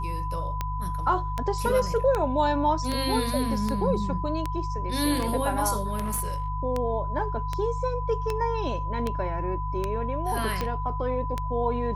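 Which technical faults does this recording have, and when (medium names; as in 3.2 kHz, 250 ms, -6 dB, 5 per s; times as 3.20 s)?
hum 50 Hz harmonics 3 -31 dBFS
tick 78 rpm -14 dBFS
whine 1 kHz -32 dBFS
5.98–6.48 s: clipped -23.5 dBFS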